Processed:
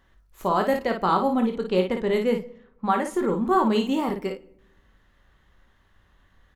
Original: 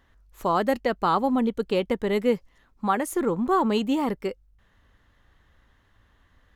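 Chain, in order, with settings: 1.06–3.14 low-pass opened by the level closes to 1800 Hz, open at -18.5 dBFS; early reflections 22 ms -8 dB, 55 ms -6 dB; reverb RT60 0.85 s, pre-delay 5 ms, DRR 13 dB; gain -1 dB

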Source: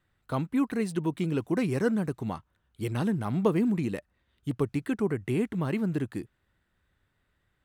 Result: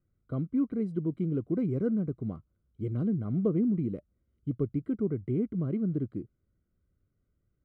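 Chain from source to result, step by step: running mean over 50 samples

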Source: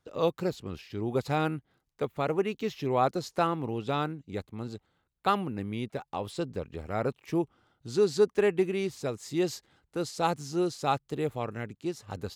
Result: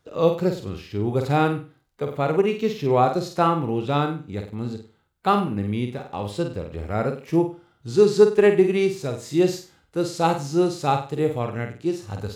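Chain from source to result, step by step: flutter echo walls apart 8.4 m, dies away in 0.34 s; harmonic-percussive split harmonic +9 dB

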